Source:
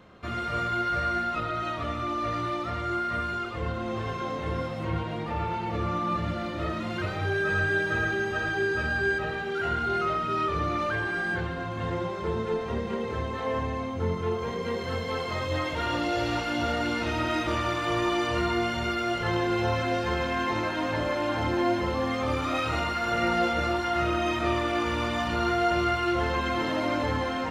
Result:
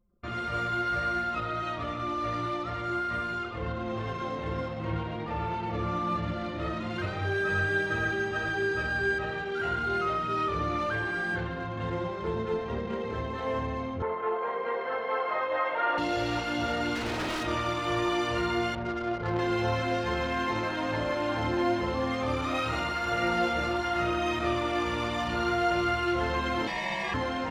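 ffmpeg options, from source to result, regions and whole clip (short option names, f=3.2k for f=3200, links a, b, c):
-filter_complex "[0:a]asettb=1/sr,asplit=3[a][b][c];[a]atrim=end=14.024[d];[b]atrim=start=14.02:end=15.98,asetpts=PTS-STARTPTS,afade=t=in:d=0.004:c=qsin,afade=t=out:st=1.956:d=0.004:c=qsin,asuperpass=centerf=1000:order=4:qfactor=0.74,acontrast=61[e];[c]atrim=start=15.976[f];[d][e]acrossfade=d=0.004:c1=hsin:c2=qsin[g];[g][f]acrossfade=d=0.004:c1=qsin:c2=hsin,asettb=1/sr,asplit=3[h][i][j];[h]atrim=end=16.954[k];[i]atrim=start=16.95:end=17.46,asetpts=PTS-STARTPTS,afade=t=in:d=0.004:c=qsin,afade=t=out:st=0.506:d=0.004:c=qsin,equalizer=f=240:t=o:w=2.5:g=4.5,aeval=exprs='0.0596*(abs(mod(val(0)/0.0596+3,4)-2)-1)':c=same[l];[j]atrim=start=17.456[m];[k][l]acrossfade=d=0.004:c1=hsin:c2=qsin[n];[n][m]acrossfade=d=0.004:c1=qsin:c2=hsin,asettb=1/sr,asplit=3[o][p][q];[o]atrim=end=18.754[r];[p]atrim=start=18.75:end=19.39,asetpts=PTS-STARTPTS,afade=t=in:d=0.004:c=qsin,afade=t=out:st=0.636:d=0.004:c=qsin,lowpass=4.2k,adynamicsmooth=sensitivity=1.5:basefreq=650[s];[q]atrim=start=19.386[t];[r][s]acrossfade=d=0.004:c1=hsin:c2=qsin[u];[u][t]acrossfade=d=0.004:c1=qsin:c2=hsin,asettb=1/sr,asplit=3[v][w][x];[v]atrim=end=26.674[y];[w]atrim=start=26.67:end=27.14,asetpts=PTS-STARTPTS,afade=t=in:d=0.004:c=qsin,afade=t=out:st=0.466:d=0.004:c=qsin,afreqshift=150,aeval=exprs='val(0)*sin(2*PI*1400*n/s)':c=same[z];[x]atrim=start=27.136[aa];[y][z]acrossfade=d=0.004:c1=hsin:c2=qsin[ab];[ab][aa]acrossfade=d=0.004:c1=qsin:c2=hsin,bandreject=f=76.95:t=h:w=4,bandreject=f=153.9:t=h:w=4,bandreject=f=230.85:t=h:w=4,bandreject=f=307.8:t=h:w=4,bandreject=f=384.75:t=h:w=4,bandreject=f=461.7:t=h:w=4,bandreject=f=538.65:t=h:w=4,bandreject=f=615.6:t=h:w=4,bandreject=f=692.55:t=h:w=4,bandreject=f=769.5:t=h:w=4,bandreject=f=846.45:t=h:w=4,bandreject=f=923.4:t=h:w=4,bandreject=f=1.00035k:t=h:w=4,bandreject=f=1.0773k:t=h:w=4,bandreject=f=1.15425k:t=h:w=4,bandreject=f=1.2312k:t=h:w=4,bandreject=f=1.30815k:t=h:w=4,bandreject=f=1.3851k:t=h:w=4,bandreject=f=1.46205k:t=h:w=4,bandreject=f=1.539k:t=h:w=4,bandreject=f=1.61595k:t=h:w=4,bandreject=f=1.6929k:t=h:w=4,bandreject=f=1.76985k:t=h:w=4,bandreject=f=1.8468k:t=h:w=4,bandreject=f=1.92375k:t=h:w=4,bandreject=f=2.0007k:t=h:w=4,bandreject=f=2.07765k:t=h:w=4,bandreject=f=2.1546k:t=h:w=4,bandreject=f=2.23155k:t=h:w=4,bandreject=f=2.3085k:t=h:w=4,bandreject=f=2.38545k:t=h:w=4,anlmdn=0.398,volume=-1.5dB"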